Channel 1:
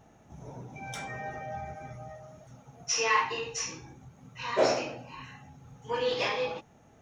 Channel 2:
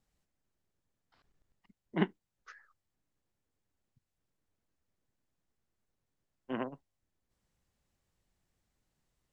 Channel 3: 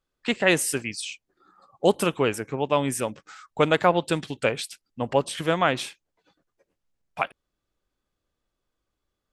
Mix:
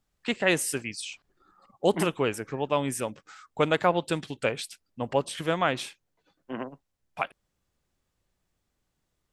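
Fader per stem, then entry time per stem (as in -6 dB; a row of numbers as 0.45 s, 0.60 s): mute, +1.5 dB, -3.5 dB; mute, 0.00 s, 0.00 s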